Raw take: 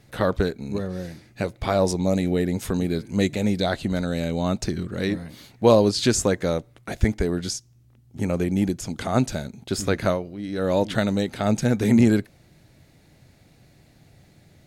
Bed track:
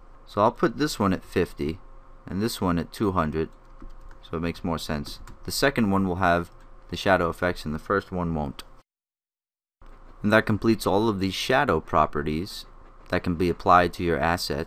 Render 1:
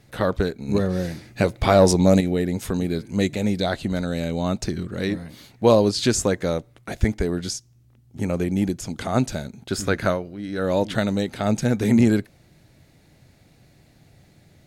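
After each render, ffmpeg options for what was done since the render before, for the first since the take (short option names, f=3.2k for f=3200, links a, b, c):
-filter_complex "[0:a]asettb=1/sr,asplit=3[a][b][c];[a]atrim=end=0.684[d];[b]atrim=start=0.68:end=2.21,asetpts=PTS-STARTPTS,afade=t=in:d=0.004:c=qsin,afade=t=out:st=1.526:d=0.004:c=qsin,acontrast=76[e];[c]atrim=start=2.206[f];[d][e]acrossfade=d=0.004:c1=hsin:c2=qsin[g];[g][f]acrossfade=d=0.004:c1=qsin:c2=hsin,asettb=1/sr,asplit=3[h][i][j];[h]atrim=end=9.534[k];[i]atrim=start=9.53:end=10.66,asetpts=PTS-STARTPTS,afade=t=in:d=0.004:c=qsin,afade=t=out:st=1.126:d=0.004:c=qsin,equalizer=f=1.5k:t=o:w=0.42:g=5.5[l];[j]atrim=start=10.656[m];[k][l]acrossfade=d=0.004:c1=hsin:c2=qsin[n];[n][m]acrossfade=d=0.004:c1=qsin:c2=hsin"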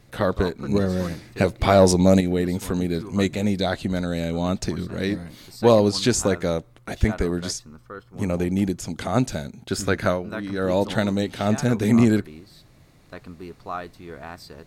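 -filter_complex "[1:a]volume=-14.5dB[a];[0:a][a]amix=inputs=2:normalize=0"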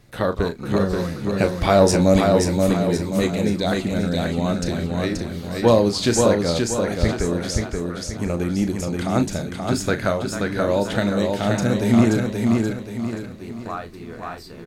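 -filter_complex "[0:a]asplit=2[a][b];[b]adelay=35,volume=-10dB[c];[a][c]amix=inputs=2:normalize=0,aecho=1:1:529|1058|1587|2116|2645:0.668|0.274|0.112|0.0461|0.0189"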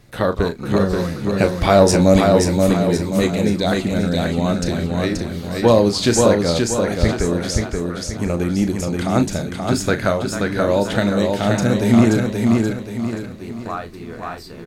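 -af "volume=3dB,alimiter=limit=-2dB:level=0:latency=1"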